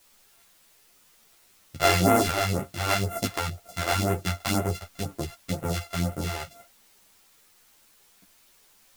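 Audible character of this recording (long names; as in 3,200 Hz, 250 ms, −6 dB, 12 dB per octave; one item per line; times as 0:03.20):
a buzz of ramps at a fixed pitch in blocks of 64 samples
phaser sweep stages 2, 2 Hz, lowest notch 160–4,400 Hz
a quantiser's noise floor 10 bits, dither triangular
a shimmering, thickened sound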